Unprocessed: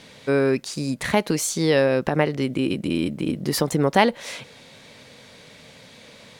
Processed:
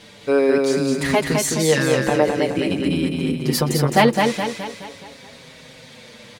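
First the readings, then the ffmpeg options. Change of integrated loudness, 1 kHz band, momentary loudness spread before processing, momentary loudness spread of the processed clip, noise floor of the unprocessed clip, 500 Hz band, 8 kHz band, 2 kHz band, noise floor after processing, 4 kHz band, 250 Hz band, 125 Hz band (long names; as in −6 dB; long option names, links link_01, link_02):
+3.0 dB, +3.5 dB, 8 LU, 9 LU, −48 dBFS, +3.5 dB, +3.5 dB, +3.5 dB, −44 dBFS, +4.0 dB, +3.0 dB, +4.0 dB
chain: -filter_complex "[0:a]asplit=2[link_01][link_02];[link_02]aecho=0:1:211|422|633|844|1055|1266:0.631|0.315|0.158|0.0789|0.0394|0.0197[link_03];[link_01][link_03]amix=inputs=2:normalize=0,asplit=2[link_04][link_05];[link_05]adelay=6.4,afreqshift=-0.46[link_06];[link_04][link_06]amix=inputs=2:normalize=1,volume=5dB"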